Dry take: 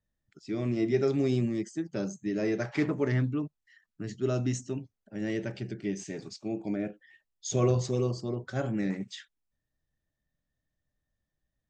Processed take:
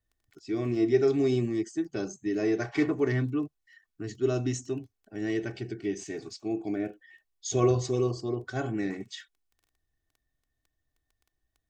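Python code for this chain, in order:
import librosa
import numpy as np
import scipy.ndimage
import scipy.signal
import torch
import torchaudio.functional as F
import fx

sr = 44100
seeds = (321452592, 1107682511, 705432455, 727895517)

y = fx.dmg_crackle(x, sr, seeds[0], per_s=10.0, level_db=-49.0)
y = y + 0.61 * np.pad(y, (int(2.7 * sr / 1000.0), 0))[:len(y)]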